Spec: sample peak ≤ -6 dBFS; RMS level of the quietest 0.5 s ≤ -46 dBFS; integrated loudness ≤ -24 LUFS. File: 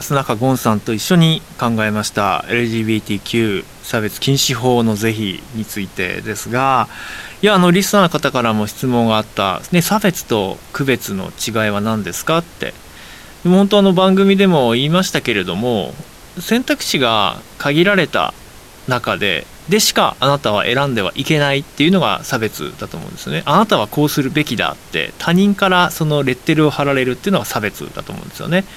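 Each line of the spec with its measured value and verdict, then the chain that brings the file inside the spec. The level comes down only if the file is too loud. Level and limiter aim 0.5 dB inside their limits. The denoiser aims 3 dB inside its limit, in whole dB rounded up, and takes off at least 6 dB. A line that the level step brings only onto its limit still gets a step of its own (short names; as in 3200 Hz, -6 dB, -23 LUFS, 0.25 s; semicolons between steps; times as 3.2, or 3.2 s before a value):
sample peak -1.5 dBFS: fail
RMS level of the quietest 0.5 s -38 dBFS: fail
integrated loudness -15.5 LUFS: fail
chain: gain -9 dB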